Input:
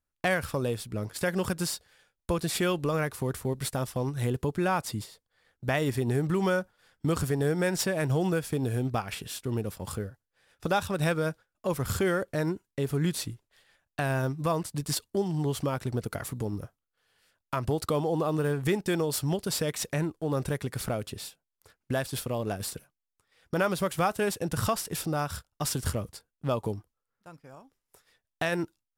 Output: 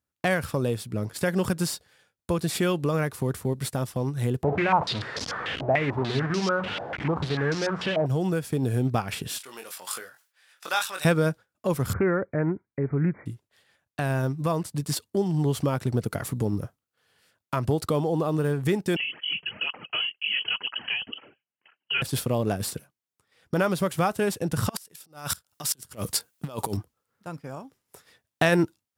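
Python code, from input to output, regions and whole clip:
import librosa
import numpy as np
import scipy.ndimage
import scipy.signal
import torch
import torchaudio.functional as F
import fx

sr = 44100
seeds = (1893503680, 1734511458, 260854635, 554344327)

y = fx.chain(x, sr, fx.delta_mod(bps=64000, step_db=-25.5),
    fx.hum_notches(base_hz=60, count=5),
    fx.filter_held_lowpass(hz=6.8, low_hz=700.0, high_hz=5300.0), at=(4.43, 8.06))
y = fx.chain(y, sr, fx.highpass(hz=1300.0, slope=12),
    fx.doubler(ms=22.0, db=-6.5),
    fx.sustainer(db_per_s=130.0), at=(9.38, 11.05))
y = fx.chain(y, sr, fx.brickwall_lowpass(high_hz=2400.0),
    fx.doppler_dist(depth_ms=0.12), at=(11.93, 13.26))
y = fx.chain(y, sr, fx.highpass(hz=100.0, slope=12),
    fx.freq_invert(carrier_hz=3100),
    fx.flanger_cancel(hz=2.0, depth_ms=4.0), at=(18.96, 22.02))
y = fx.chain(y, sr, fx.over_compress(threshold_db=-35.0, ratio=-0.5),
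    fx.tilt_eq(slope=2.5),
    fx.gate_flip(shuts_db=-18.0, range_db=-25), at=(24.69, 26.77))
y = scipy.signal.sosfilt(scipy.signal.butter(2, 98.0, 'highpass', fs=sr, output='sos'), y)
y = fx.low_shelf(y, sr, hz=310.0, db=5.5)
y = fx.rider(y, sr, range_db=10, speed_s=2.0)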